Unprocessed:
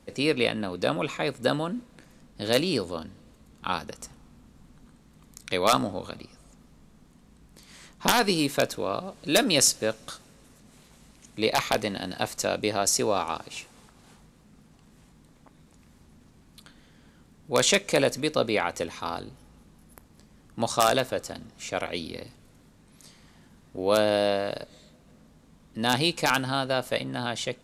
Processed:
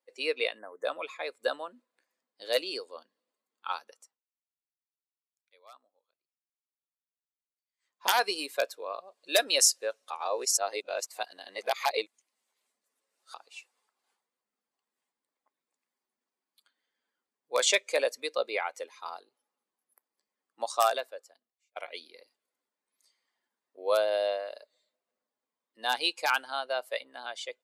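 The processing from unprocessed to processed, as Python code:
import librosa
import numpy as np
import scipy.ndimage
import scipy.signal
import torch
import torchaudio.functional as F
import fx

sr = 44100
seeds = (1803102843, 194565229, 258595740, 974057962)

y = fx.spec_erase(x, sr, start_s=0.59, length_s=0.26, low_hz=2100.0, high_hz=5900.0)
y = fx.edit(y, sr, fx.fade_down_up(start_s=3.94, length_s=4.11, db=-20.0, fade_s=0.28),
    fx.reverse_span(start_s=10.1, length_s=3.24),
    fx.fade_out_span(start_s=20.76, length_s=1.0), tone=tone)
y = fx.bin_expand(y, sr, power=1.5)
y = scipy.signal.sosfilt(scipy.signal.butter(4, 470.0, 'highpass', fs=sr, output='sos'), y)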